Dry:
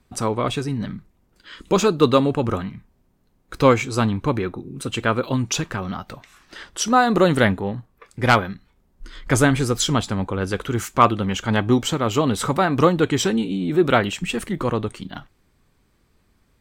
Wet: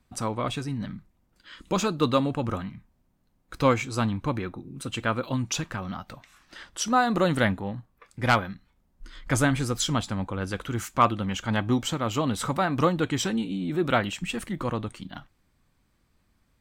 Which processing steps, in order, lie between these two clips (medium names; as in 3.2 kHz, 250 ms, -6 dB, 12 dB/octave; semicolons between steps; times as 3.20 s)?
peaking EQ 410 Hz -8 dB 0.31 oct; trim -5.5 dB